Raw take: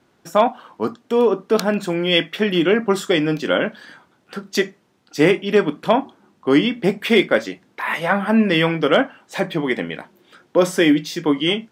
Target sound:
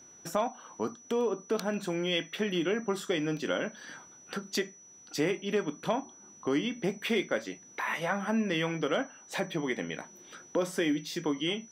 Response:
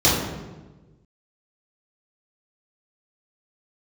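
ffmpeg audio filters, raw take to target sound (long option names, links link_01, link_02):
-af "acompressor=threshold=-34dB:ratio=2,aeval=exprs='val(0)+0.00316*sin(2*PI*5900*n/s)':channel_layout=same,volume=-2dB"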